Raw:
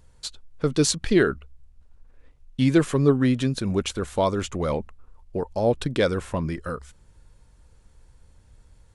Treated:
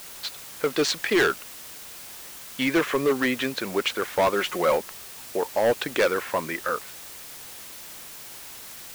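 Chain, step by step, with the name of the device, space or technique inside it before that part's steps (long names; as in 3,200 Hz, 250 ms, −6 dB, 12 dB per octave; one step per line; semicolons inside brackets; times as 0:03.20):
drive-through speaker (band-pass filter 490–3,500 Hz; parametric band 2,000 Hz +5.5 dB; hard clipping −22 dBFS, distortion −9 dB; white noise bed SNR 14 dB)
0:04.33–0:04.77: comb filter 5.5 ms, depth 57%
level +6 dB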